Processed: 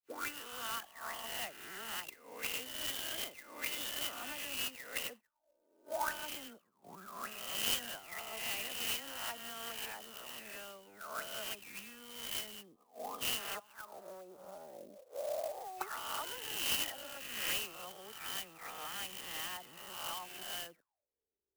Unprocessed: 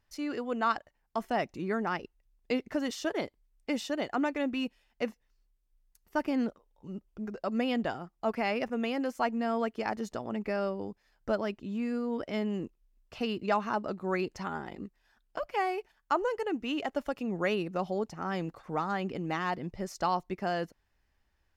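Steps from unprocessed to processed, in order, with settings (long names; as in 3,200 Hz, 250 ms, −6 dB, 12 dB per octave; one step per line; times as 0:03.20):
peak hold with a rise ahead of every peak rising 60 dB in 1.14 s
notch filter 2,200 Hz, Q 15
0:12.59–0:13.18: time-frequency box erased 1,300–3,100 Hz
noise gate −45 dBFS, range −15 dB
low-shelf EQ 190 Hz +7 dB
0:13.51–0:15.73: downward compressor 6 to 1, threshold −43 dBFS, peak gain reduction 20 dB
envelope filter 400–3,100 Hz, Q 13, up, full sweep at −27.5 dBFS
high-frequency loss of the air 260 metres
all-pass dispersion lows, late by 88 ms, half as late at 2,400 Hz
converter with an unsteady clock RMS 0.053 ms
level +15 dB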